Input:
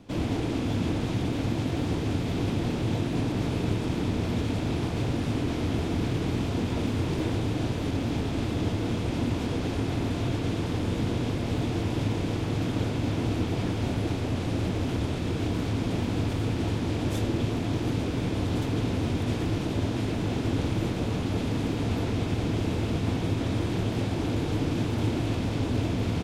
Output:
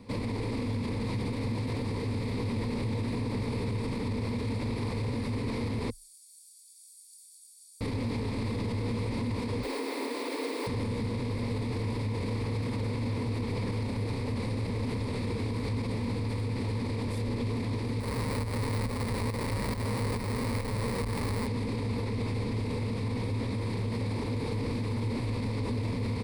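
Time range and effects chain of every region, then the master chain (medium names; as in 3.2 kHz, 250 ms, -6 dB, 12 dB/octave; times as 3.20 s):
5.90–7.81 s: inverse Chebyshev high-pass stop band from 1.4 kHz, stop band 80 dB + comb 0.9 ms, depth 55%
9.63–10.67 s: steep high-pass 270 Hz 72 dB/octave + word length cut 8-bit, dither none
18.00–21.47 s: bass shelf 76 Hz +8.5 dB + Schmitt trigger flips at -39 dBFS + tremolo saw up 2.3 Hz, depth 75%
whole clip: rippled EQ curve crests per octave 0.93, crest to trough 12 dB; peak limiter -24.5 dBFS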